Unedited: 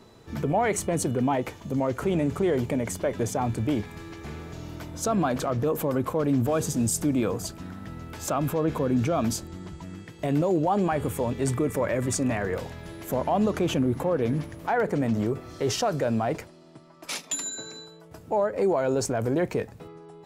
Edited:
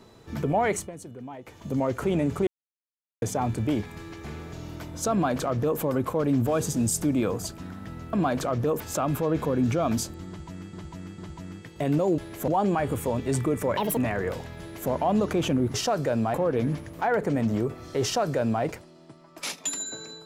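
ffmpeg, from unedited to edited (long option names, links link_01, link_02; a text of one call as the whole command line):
ffmpeg -i in.wav -filter_complex "[0:a]asplit=15[link_01][link_02][link_03][link_04][link_05][link_06][link_07][link_08][link_09][link_10][link_11][link_12][link_13][link_14][link_15];[link_01]atrim=end=0.92,asetpts=PTS-STARTPTS,afade=type=out:start_time=0.71:duration=0.21:silence=0.16788[link_16];[link_02]atrim=start=0.92:end=1.45,asetpts=PTS-STARTPTS,volume=-15.5dB[link_17];[link_03]atrim=start=1.45:end=2.47,asetpts=PTS-STARTPTS,afade=type=in:duration=0.21:silence=0.16788,afade=type=out:start_time=1.016:duration=0.004:curve=hsin[link_18];[link_04]atrim=start=2.47:end=3.22,asetpts=PTS-STARTPTS,volume=0[link_19];[link_05]atrim=start=3.22:end=8.132,asetpts=PTS-STARTPTS,afade=type=in:duration=0.004:curve=hsin[link_20];[link_06]atrim=start=5.118:end=5.792[link_21];[link_07]atrim=start=8.128:end=10.062[link_22];[link_08]atrim=start=9.608:end=10.062[link_23];[link_09]atrim=start=9.608:end=10.612[link_24];[link_10]atrim=start=12.858:end=13.162[link_25];[link_11]atrim=start=10.608:end=11.904[link_26];[link_12]atrim=start=11.9:end=12.23,asetpts=PTS-STARTPTS,asetrate=72324,aresample=44100[link_27];[link_13]atrim=start=12.226:end=14.002[link_28];[link_14]atrim=start=15.688:end=16.292[link_29];[link_15]atrim=start=13.998[link_30];[link_16][link_17][link_18][link_19][link_20]concat=n=5:v=0:a=1[link_31];[link_31][link_21]acrossfade=duration=0.004:curve1=hsin:curve2=hsin[link_32];[link_32][link_22]acrossfade=duration=0.004:curve1=hsin:curve2=hsin[link_33];[link_33][link_23]acrossfade=duration=0.004:curve1=hsin:curve2=hsin[link_34];[link_34][link_24]acrossfade=duration=0.004:curve1=hsin:curve2=hsin[link_35];[link_35][link_25]acrossfade=duration=0.004:curve1=hsin:curve2=hsin[link_36];[link_36][link_26]acrossfade=duration=0.004:curve1=hsin:curve2=hsin[link_37];[link_37][link_27]acrossfade=duration=0.004:curve1=hsin:curve2=hsin[link_38];[link_38][link_28]acrossfade=duration=0.004:curve1=hsin:curve2=hsin[link_39];[link_39][link_29]acrossfade=duration=0.004:curve1=hsin:curve2=hsin[link_40];[link_40][link_30]acrossfade=duration=0.004:curve1=hsin:curve2=hsin" out.wav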